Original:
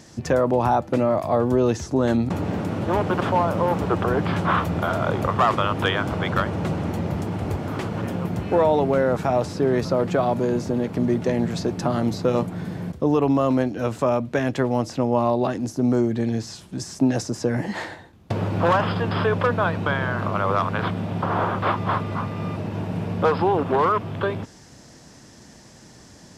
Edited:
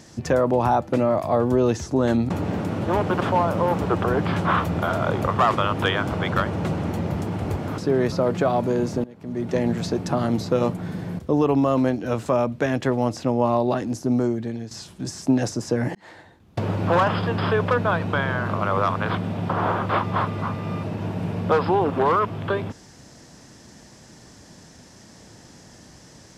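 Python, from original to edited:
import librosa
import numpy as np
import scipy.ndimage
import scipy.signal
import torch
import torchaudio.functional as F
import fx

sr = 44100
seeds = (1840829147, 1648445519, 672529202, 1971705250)

y = fx.edit(x, sr, fx.cut(start_s=7.78, length_s=1.73),
    fx.fade_in_from(start_s=10.77, length_s=0.52, curve='qua', floor_db=-20.0),
    fx.fade_out_to(start_s=15.78, length_s=0.66, floor_db=-11.0),
    fx.fade_in_span(start_s=17.68, length_s=0.67), tone=tone)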